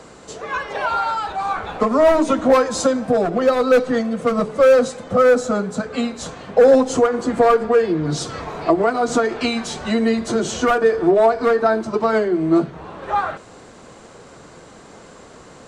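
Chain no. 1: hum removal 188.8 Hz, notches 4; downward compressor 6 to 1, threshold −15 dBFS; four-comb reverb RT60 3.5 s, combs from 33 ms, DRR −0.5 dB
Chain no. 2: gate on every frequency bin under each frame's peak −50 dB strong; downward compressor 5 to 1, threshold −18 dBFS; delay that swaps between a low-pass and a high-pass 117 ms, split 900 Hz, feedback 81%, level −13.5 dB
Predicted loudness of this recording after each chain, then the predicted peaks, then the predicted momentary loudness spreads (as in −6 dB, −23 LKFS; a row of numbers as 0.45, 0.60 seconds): −18.0, −23.0 LKFS; −4.0, −7.5 dBFS; 9, 19 LU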